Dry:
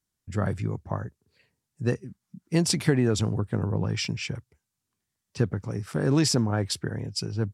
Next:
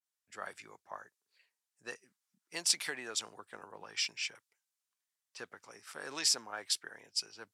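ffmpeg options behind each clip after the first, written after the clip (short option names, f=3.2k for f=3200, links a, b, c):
-af "highpass=910,adynamicequalizer=threshold=0.00501:dfrequency=1900:dqfactor=0.7:tfrequency=1900:tqfactor=0.7:attack=5:release=100:ratio=0.375:range=2.5:mode=boostabove:tftype=highshelf,volume=-7dB"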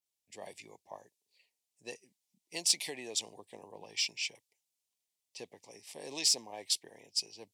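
-filter_complex "[0:a]asuperstop=centerf=1400:order=4:qfactor=1,asplit=2[a][b];[b]asoftclip=type=tanh:threshold=-27.5dB,volume=-9.5dB[c];[a][c]amix=inputs=2:normalize=0"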